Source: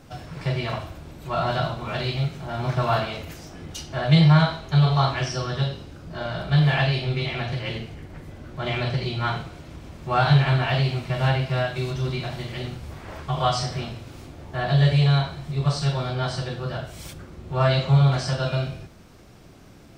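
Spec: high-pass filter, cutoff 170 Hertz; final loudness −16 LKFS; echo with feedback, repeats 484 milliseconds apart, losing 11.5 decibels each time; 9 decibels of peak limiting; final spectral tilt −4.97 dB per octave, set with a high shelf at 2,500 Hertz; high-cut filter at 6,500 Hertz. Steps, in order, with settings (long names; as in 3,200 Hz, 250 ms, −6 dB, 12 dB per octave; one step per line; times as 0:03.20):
high-pass filter 170 Hz
low-pass filter 6,500 Hz
high-shelf EQ 2,500 Hz +6 dB
brickwall limiter −14.5 dBFS
repeating echo 484 ms, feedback 27%, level −11.5 dB
level +10.5 dB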